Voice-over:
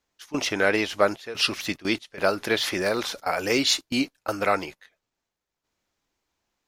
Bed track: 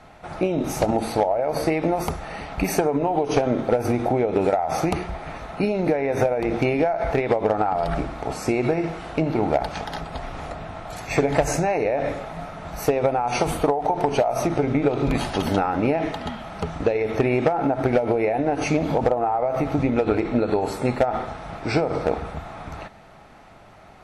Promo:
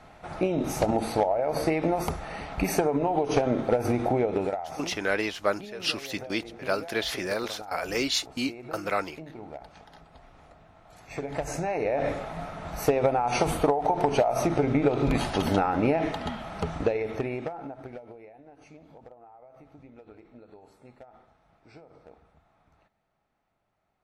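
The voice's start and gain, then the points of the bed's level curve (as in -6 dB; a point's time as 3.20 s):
4.45 s, -5.0 dB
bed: 4.25 s -3.5 dB
5.02 s -20.5 dB
10.76 s -20.5 dB
12.03 s -2.5 dB
16.78 s -2.5 dB
18.39 s -29.5 dB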